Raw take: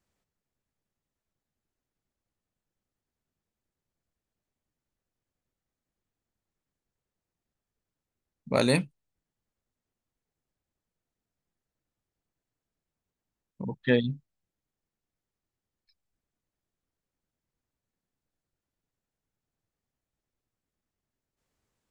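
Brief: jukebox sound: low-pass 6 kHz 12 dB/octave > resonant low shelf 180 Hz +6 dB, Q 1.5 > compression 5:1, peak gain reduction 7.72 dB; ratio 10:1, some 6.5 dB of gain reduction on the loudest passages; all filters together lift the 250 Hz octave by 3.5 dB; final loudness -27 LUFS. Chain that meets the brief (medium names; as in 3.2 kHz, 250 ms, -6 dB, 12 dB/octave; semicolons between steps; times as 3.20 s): peaking EQ 250 Hz +4.5 dB; compression 10:1, threshold -22 dBFS; low-pass 6 kHz 12 dB/octave; resonant low shelf 180 Hz +6 dB, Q 1.5; compression 5:1, threshold -28 dBFS; trim +8 dB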